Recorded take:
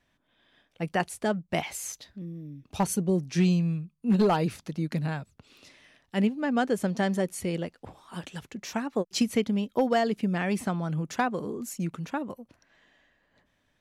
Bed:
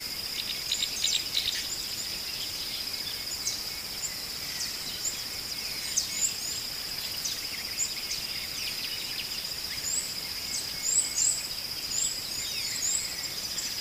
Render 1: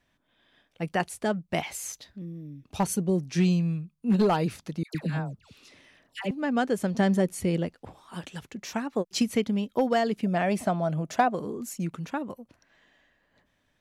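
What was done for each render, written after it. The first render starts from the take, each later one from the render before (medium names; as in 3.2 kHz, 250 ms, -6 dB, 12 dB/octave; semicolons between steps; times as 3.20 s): 4.83–6.31 s: phase dispersion lows, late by 117 ms, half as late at 1.1 kHz; 6.94–7.76 s: bass shelf 400 Hz +6 dB; 10.26–11.35 s: peaking EQ 650 Hz +14 dB 0.36 oct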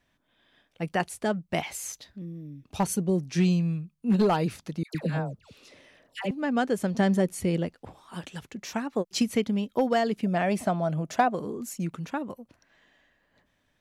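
4.98–6.26 s: peaking EQ 530 Hz +8 dB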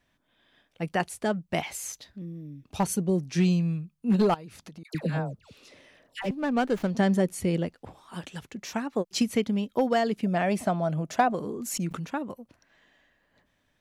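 4.34–4.85 s: compression, threshold -41 dBFS; 6.22–6.89 s: sliding maximum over 5 samples; 11.20–12.12 s: swell ahead of each attack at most 55 dB/s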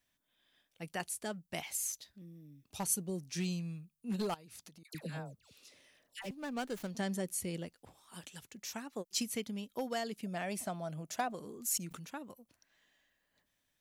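pre-emphasis filter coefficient 0.8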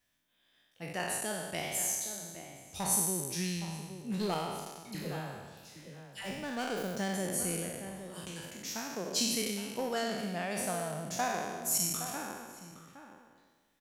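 spectral sustain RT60 1.45 s; echo from a far wall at 140 m, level -10 dB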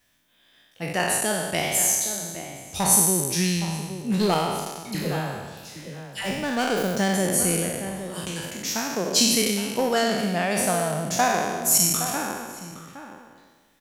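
trim +11.5 dB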